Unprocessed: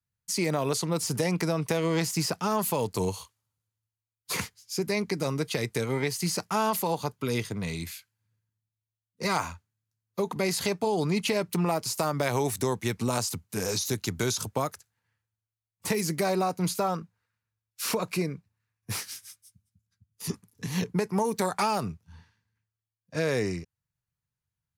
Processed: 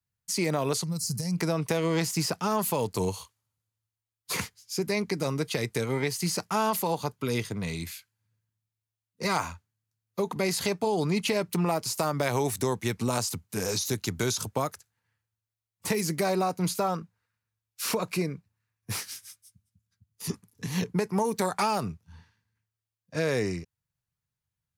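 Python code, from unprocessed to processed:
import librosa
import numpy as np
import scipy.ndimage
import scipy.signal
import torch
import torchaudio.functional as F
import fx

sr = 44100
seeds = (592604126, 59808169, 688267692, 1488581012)

y = fx.spec_box(x, sr, start_s=0.83, length_s=0.54, low_hz=230.0, high_hz=4000.0, gain_db=-16)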